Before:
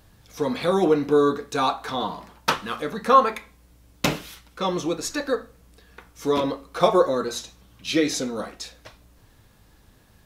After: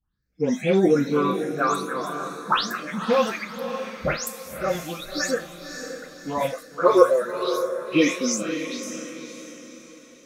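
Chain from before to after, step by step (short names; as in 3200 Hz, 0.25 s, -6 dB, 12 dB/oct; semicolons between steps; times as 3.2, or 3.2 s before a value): spectral delay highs late, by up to 0.224 s; spectral noise reduction 27 dB; phaser stages 6, 0.4 Hz, lowest notch 200–1200 Hz; diffused feedback echo 0.566 s, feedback 43%, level -8.5 dB; gain +4.5 dB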